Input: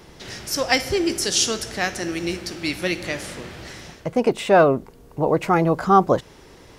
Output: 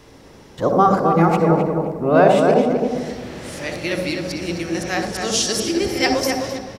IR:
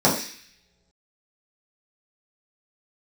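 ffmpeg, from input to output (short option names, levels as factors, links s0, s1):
-filter_complex "[0:a]areverse,asplit=2[s0][s1];[s1]adelay=259,lowpass=f=2100:p=1,volume=0.631,asplit=2[s2][s3];[s3]adelay=259,lowpass=f=2100:p=1,volume=0.32,asplit=2[s4][s5];[s5]adelay=259,lowpass=f=2100:p=1,volume=0.32,asplit=2[s6][s7];[s7]adelay=259,lowpass=f=2100:p=1,volume=0.32[s8];[s0][s2][s4][s6][s8]amix=inputs=5:normalize=0,asplit=2[s9][s10];[1:a]atrim=start_sample=2205,adelay=60[s11];[s10][s11]afir=irnorm=-1:irlink=0,volume=0.0631[s12];[s9][s12]amix=inputs=2:normalize=0,volume=0.891"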